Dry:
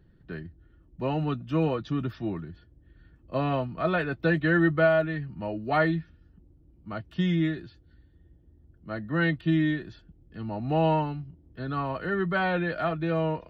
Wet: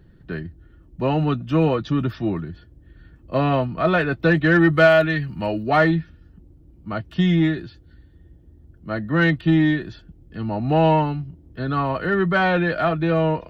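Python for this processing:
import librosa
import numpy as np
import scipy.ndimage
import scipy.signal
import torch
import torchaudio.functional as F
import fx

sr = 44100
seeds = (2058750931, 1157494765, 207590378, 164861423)

p1 = fx.high_shelf(x, sr, hz=2200.0, db=11.0, at=(4.73, 5.63))
p2 = 10.0 ** (-22.0 / 20.0) * np.tanh(p1 / 10.0 ** (-22.0 / 20.0))
p3 = p1 + F.gain(torch.from_numpy(p2), -4.0).numpy()
y = F.gain(torch.from_numpy(p3), 4.0).numpy()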